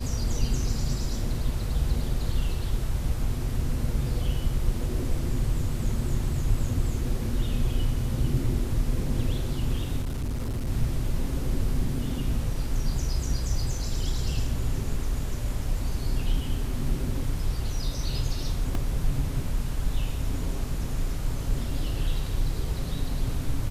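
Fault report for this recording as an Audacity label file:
10.000000	10.670000	clipped -26 dBFS
18.750000	18.750000	gap 2.1 ms

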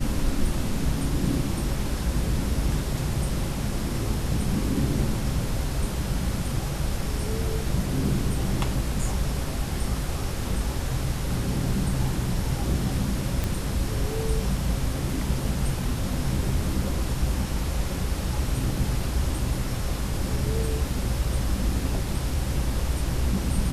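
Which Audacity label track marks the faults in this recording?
13.440000	13.440000	pop

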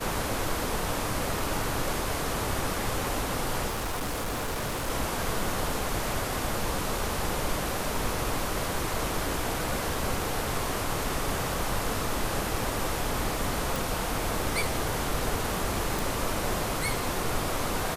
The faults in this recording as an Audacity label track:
3.680000	4.900000	clipped -27.5 dBFS
13.760000	13.760000	pop
15.990000	15.990000	pop

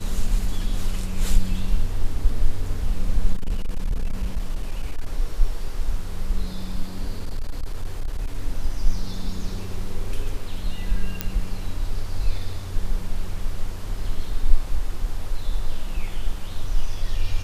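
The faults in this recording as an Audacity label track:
3.330000	5.060000	clipped -18.5 dBFS
7.110000	8.350000	clipped -20.5 dBFS
11.210000	11.210000	pop -8 dBFS

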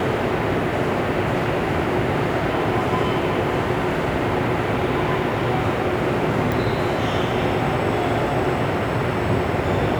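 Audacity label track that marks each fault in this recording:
6.520000	6.520000	pop

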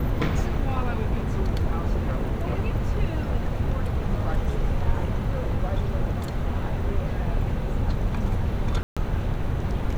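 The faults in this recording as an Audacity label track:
8.830000	8.970000	gap 0.136 s

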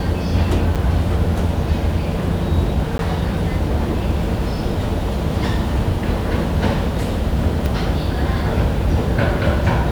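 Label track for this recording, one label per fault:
0.750000	0.760000	gap 7.1 ms
2.980000	2.990000	gap
7.660000	7.660000	pop

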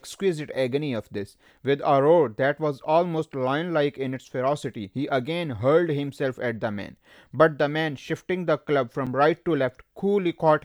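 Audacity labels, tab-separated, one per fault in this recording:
9.060000	9.070000	gap 6.7 ms

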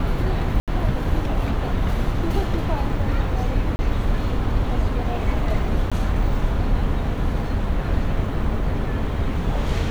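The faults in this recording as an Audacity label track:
0.600000	0.680000	gap 77 ms
3.760000	3.790000	gap 30 ms
5.900000	5.920000	gap 16 ms

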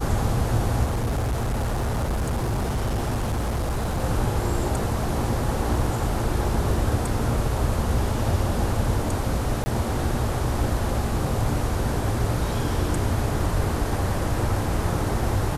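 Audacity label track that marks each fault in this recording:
0.840000	4.030000	clipped -21 dBFS
9.640000	9.660000	gap 20 ms

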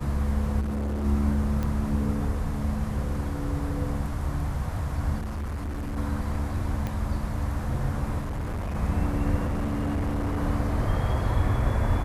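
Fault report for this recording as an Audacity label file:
0.600000	1.050000	clipped -26 dBFS
1.630000	1.630000	pop -18 dBFS
5.180000	5.980000	clipped -28.5 dBFS
6.870000	6.870000	pop -18 dBFS
8.200000	8.760000	clipped -27.5 dBFS
9.450000	10.390000	clipped -23.5 dBFS

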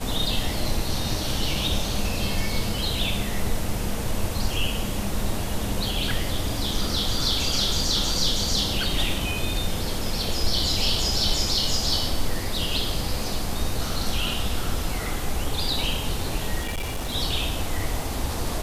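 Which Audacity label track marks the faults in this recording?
16.610000	17.120000	clipped -24.5 dBFS

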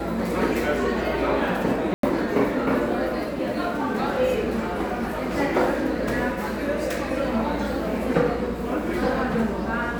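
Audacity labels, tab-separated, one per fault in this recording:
1.940000	2.030000	gap 93 ms

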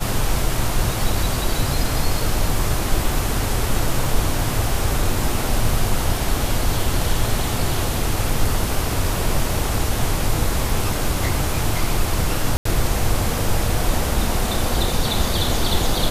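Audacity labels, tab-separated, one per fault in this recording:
12.570000	12.650000	gap 84 ms

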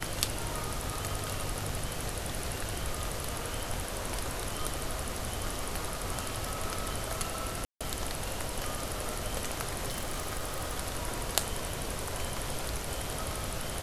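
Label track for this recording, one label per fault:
7.650000	7.810000	gap 0.156 s
9.880000	10.740000	clipped -29 dBFS

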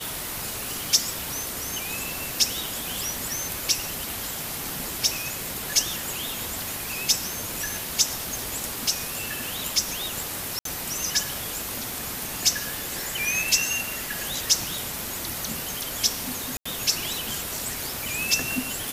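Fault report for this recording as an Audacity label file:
10.590000	10.650000	gap 63 ms
14.990000	14.990000	pop
16.570000	16.660000	gap 85 ms

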